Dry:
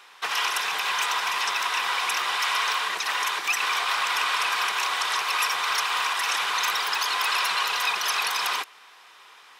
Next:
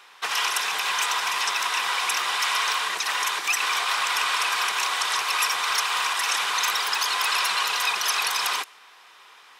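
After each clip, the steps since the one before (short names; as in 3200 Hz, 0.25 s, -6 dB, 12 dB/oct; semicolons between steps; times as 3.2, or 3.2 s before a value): dynamic EQ 8400 Hz, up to +5 dB, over -45 dBFS, Q 0.76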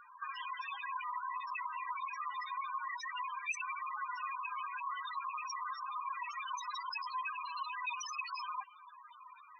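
limiter -19 dBFS, peak gain reduction 9 dB; compressor 5:1, threshold -34 dBFS, peak gain reduction 9 dB; loudest bins only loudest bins 4; gain +5 dB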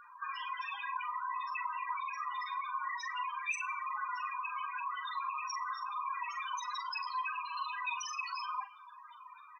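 doubler 42 ms -7.5 dB; two-slope reverb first 0.52 s, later 2.3 s, from -26 dB, DRR 18 dB; gain +1.5 dB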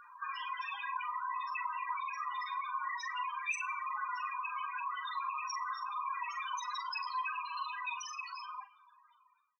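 ending faded out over 2.17 s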